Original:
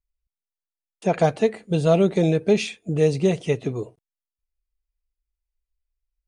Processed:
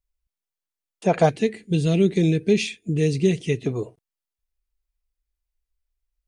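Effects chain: 1.29–3.66 s: high-order bell 860 Hz -15.5 dB; trim +1.5 dB

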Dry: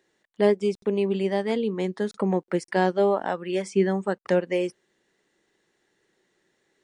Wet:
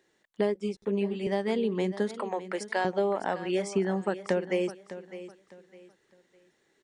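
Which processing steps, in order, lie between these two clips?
2.18–2.85 s: high-pass 610 Hz 12 dB/octave; compression 6:1, threshold -23 dBFS, peak gain reduction 9.5 dB; on a send: feedback delay 606 ms, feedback 29%, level -14 dB; 0.54–1.27 s: on the sum: three-phase chorus

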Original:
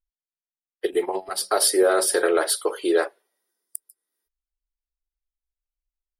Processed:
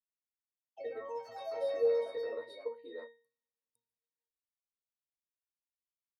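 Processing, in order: pitch-class resonator A#, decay 0.38 s; ever faster or slower copies 90 ms, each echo +3 st, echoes 3, each echo -6 dB

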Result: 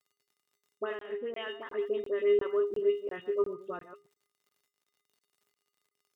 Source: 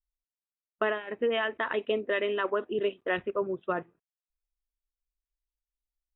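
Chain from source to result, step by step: chunks repeated in reverse 123 ms, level -11.5 dB; 1.49–3.53 s: treble shelf 2.1 kHz -9 dB; phase dispersion highs, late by 56 ms, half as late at 1.6 kHz; crackle 69 per s -47 dBFS; high-pass 110 Hz 24 dB/octave; feedback comb 410 Hz, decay 0.3 s, harmonics odd, mix 90%; crackling interface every 0.35 s, samples 1024, zero, from 0.99 s; trim +8 dB

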